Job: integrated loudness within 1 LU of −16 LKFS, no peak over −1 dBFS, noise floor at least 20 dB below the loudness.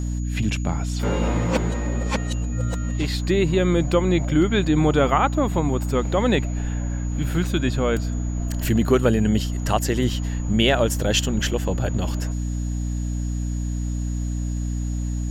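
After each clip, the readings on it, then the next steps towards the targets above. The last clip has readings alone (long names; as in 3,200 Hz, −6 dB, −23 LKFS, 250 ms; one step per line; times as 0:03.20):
mains hum 60 Hz; hum harmonics up to 300 Hz; level of the hum −23 dBFS; interfering tone 6,800 Hz; level of the tone −43 dBFS; integrated loudness −23.0 LKFS; sample peak −4.0 dBFS; target loudness −16.0 LKFS
→ hum removal 60 Hz, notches 5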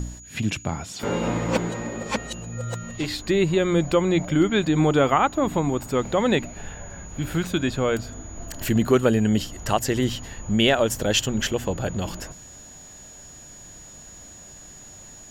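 mains hum none found; interfering tone 6,800 Hz; level of the tone −43 dBFS
→ notch filter 6,800 Hz, Q 30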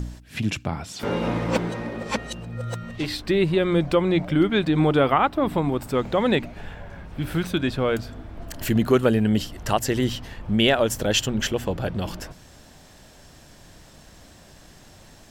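interfering tone none found; integrated loudness −23.5 LKFS; sample peak −4.5 dBFS; target loudness −16.0 LKFS
→ level +7.5 dB
brickwall limiter −1 dBFS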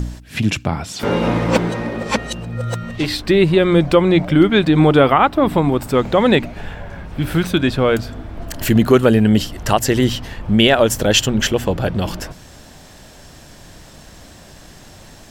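integrated loudness −16.0 LKFS; sample peak −1.0 dBFS; background noise floor −42 dBFS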